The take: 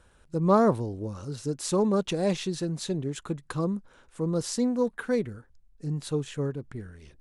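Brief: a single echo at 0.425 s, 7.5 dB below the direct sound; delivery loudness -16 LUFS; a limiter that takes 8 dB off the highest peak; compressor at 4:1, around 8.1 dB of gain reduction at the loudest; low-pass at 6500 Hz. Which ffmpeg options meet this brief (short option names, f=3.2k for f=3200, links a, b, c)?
-af "lowpass=6.5k,acompressor=threshold=-26dB:ratio=4,alimiter=level_in=3dB:limit=-24dB:level=0:latency=1,volume=-3dB,aecho=1:1:425:0.422,volume=20dB"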